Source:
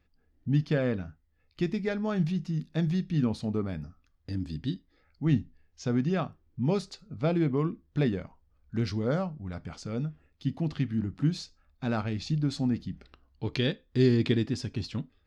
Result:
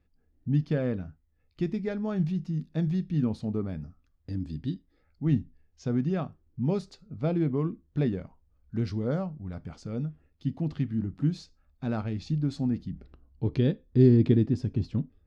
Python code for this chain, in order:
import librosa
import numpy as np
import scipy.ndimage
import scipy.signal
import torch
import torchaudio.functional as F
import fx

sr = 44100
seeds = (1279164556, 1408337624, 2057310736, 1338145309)

y = fx.tilt_shelf(x, sr, db=fx.steps((0.0, 4.0), (12.91, 9.5)), hz=840.0)
y = y * 10.0 ** (-3.5 / 20.0)